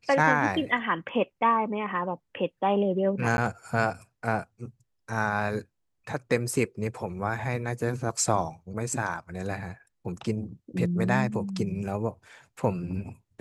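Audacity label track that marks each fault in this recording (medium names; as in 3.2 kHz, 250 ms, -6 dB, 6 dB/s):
3.370000	3.380000	dropout 11 ms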